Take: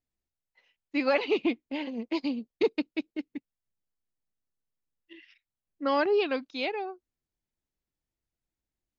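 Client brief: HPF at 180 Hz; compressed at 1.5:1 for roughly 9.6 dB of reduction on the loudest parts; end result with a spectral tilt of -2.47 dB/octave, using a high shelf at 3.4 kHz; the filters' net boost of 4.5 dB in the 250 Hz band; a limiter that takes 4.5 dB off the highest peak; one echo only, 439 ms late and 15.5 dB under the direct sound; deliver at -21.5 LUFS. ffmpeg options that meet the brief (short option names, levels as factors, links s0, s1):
-af "highpass=180,equalizer=f=250:t=o:g=6.5,highshelf=f=3400:g=-3.5,acompressor=threshold=0.00447:ratio=1.5,alimiter=level_in=1.33:limit=0.0631:level=0:latency=1,volume=0.75,aecho=1:1:439:0.168,volume=6.68"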